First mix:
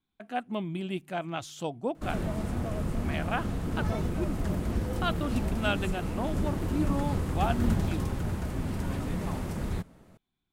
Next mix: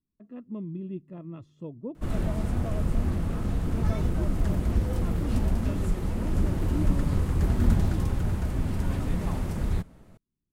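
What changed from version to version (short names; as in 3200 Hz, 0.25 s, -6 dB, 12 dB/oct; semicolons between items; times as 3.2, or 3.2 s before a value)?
speech: add running mean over 58 samples; background: add low shelf 87 Hz +9.5 dB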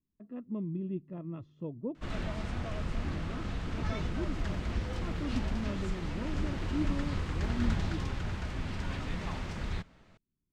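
background: add tilt shelf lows -9 dB, about 1200 Hz; master: add air absorption 160 m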